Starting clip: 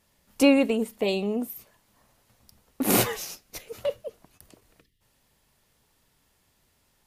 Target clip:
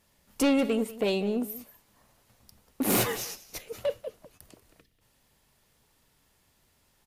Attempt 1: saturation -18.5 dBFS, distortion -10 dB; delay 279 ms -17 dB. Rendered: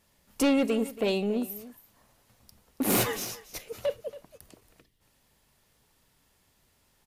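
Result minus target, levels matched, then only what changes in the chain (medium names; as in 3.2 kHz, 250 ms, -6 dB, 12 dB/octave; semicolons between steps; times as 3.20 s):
echo 89 ms late
change: delay 190 ms -17 dB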